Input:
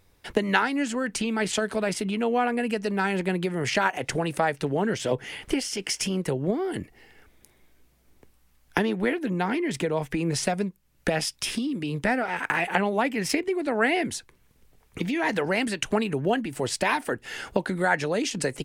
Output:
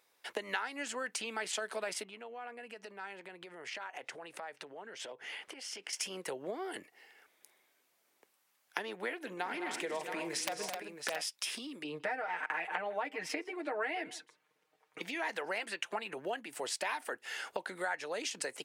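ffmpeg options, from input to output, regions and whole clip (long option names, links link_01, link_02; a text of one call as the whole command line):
ffmpeg -i in.wav -filter_complex "[0:a]asettb=1/sr,asplit=3[link_01][link_02][link_03];[link_01]atrim=end=2.034[link_04];[link_02]atrim=start=2.03:end=5.93,asetpts=PTS-STARTPTS,afade=type=in:duration=0.004:curve=qsin,afade=type=out:start_time=3.896:duration=0.004:curve=qsin,lowpass=frequency=3900:poles=1,acompressor=threshold=-33dB:ratio=10:attack=3.2:release=140:knee=1:detection=peak[link_05];[link_03]atrim=start=5.926[link_06];[link_04][link_05]acrossfade=duration=0.004:curve1=hsin:curve2=qsin[link_07];[link_07][link_06]acrossfade=duration=0.004:curve1=qsin:curve2=hsin,asettb=1/sr,asplit=3[link_08][link_09][link_10];[link_08]atrim=end=9.164[link_11];[link_09]atrim=start=9.16:end=11.22,asetpts=PTS-STARTPTS,afade=type=in:duration=0.004:curve=qsin,afade=type=out:start_time=2.056:duration=0.004:curve=qsin,aeval=exprs='(mod(4.22*val(0)+1,2)-1)/4.22':channel_layout=same,aecho=1:1:42|159|211|259|671:0.133|0.133|0.299|0.355|0.335,atrim=end_sample=90846[link_12];[link_10]atrim=start=11.216[link_13];[link_11][link_12]acrossfade=duration=0.004:curve1=hsin:curve2=qsin[link_14];[link_14][link_13]acrossfade=duration=0.004:curve1=qsin:curve2=hsin,asettb=1/sr,asplit=3[link_15][link_16][link_17];[link_15]atrim=end=11.844[link_18];[link_16]atrim=start=11.84:end=15.01,asetpts=PTS-STARTPTS,afade=type=in:duration=0.004:curve=qsin,afade=type=out:start_time=3.166:duration=0.004:curve=qsin,lowpass=frequency=1900:poles=1,aecho=1:1:6.5:0.81,atrim=end_sample=139797,aecho=1:1:155:0.0668,atrim=end_sample=139797[link_19];[link_17]atrim=start=15.006[link_20];[link_18][link_19]acrossfade=duration=0.004:curve1=hsin:curve2=qsin[link_21];[link_21][link_20]acrossfade=duration=0.004:curve1=qsin:curve2=hsin,asettb=1/sr,asplit=3[link_22][link_23][link_24];[link_22]atrim=end=15.584[link_25];[link_23]atrim=start=15.58:end=16.17,asetpts=PTS-STARTPTS,afade=type=in:duration=0.004:curve=qsin,afade=type=out:start_time=0.586:duration=0.004:curve=qsin,bass=frequency=250:gain=-3,treble=frequency=4000:gain=-6,aecho=1:1:5.8:0.55,atrim=end_sample=26019[link_26];[link_24]atrim=start=16.166[link_27];[link_25][link_26]acrossfade=duration=0.004:curve1=hsin:curve2=qsin[link_28];[link_28][link_27]acrossfade=duration=0.004:curve1=qsin:curve2=hsin,highpass=580,acompressor=threshold=-30dB:ratio=3,volume=-4.5dB" out.wav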